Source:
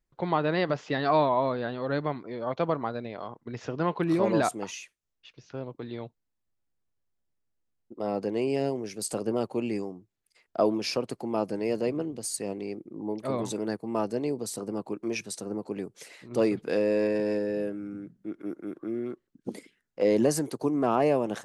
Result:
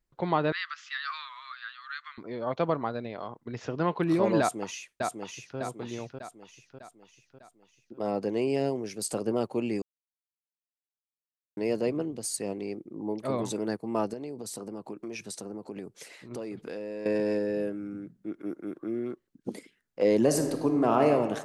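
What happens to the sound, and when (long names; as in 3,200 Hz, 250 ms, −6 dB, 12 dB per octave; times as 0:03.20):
0:00.52–0:02.18: Chebyshev band-pass filter 1,200–8,300 Hz, order 5
0:04.40–0:05.58: delay throw 600 ms, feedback 50%, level −4 dB
0:09.82–0:11.57: silence
0:14.13–0:17.06: downward compressor, threshold −34 dBFS
0:20.23–0:21.10: thrown reverb, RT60 1.4 s, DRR 4.5 dB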